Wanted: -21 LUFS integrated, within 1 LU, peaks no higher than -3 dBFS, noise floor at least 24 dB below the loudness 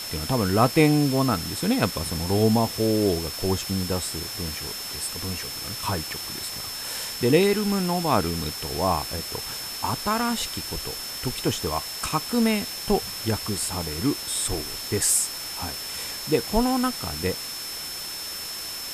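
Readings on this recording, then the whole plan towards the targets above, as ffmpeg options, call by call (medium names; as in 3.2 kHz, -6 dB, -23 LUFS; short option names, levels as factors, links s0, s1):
steady tone 5.3 kHz; tone level -34 dBFS; noise floor -34 dBFS; noise floor target -49 dBFS; loudness -25.0 LUFS; peak level -5.0 dBFS; loudness target -21.0 LUFS
-> -af "bandreject=f=5300:w=30"
-af "afftdn=nr=15:nf=-34"
-af "volume=1.58,alimiter=limit=0.708:level=0:latency=1"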